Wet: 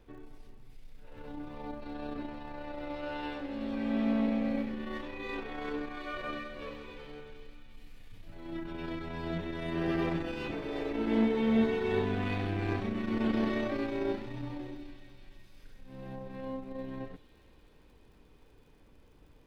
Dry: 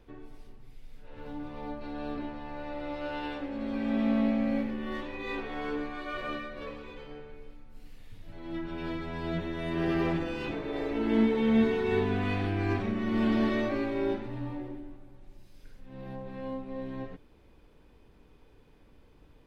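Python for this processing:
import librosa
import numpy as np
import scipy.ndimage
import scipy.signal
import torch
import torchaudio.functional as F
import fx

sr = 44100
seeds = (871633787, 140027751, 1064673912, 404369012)

p1 = fx.dmg_crackle(x, sr, seeds[0], per_s=95.0, level_db=-58.0)
p2 = p1 + fx.echo_wet_highpass(p1, sr, ms=364, feedback_pct=65, hz=3200.0, wet_db=-6.5, dry=0)
p3 = fx.transformer_sat(p2, sr, knee_hz=270.0)
y = F.gain(torch.from_numpy(p3), -1.5).numpy()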